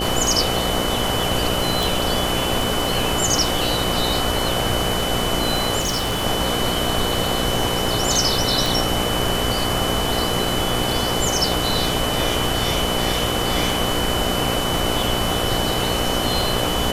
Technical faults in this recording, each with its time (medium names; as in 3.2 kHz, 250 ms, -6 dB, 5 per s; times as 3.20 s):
buzz 60 Hz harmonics 13 -26 dBFS
crackle 82 per s -28 dBFS
whine 3 kHz -26 dBFS
1.83 s: pop
5.79–6.25 s: clipped -18 dBFS
8.66 s: pop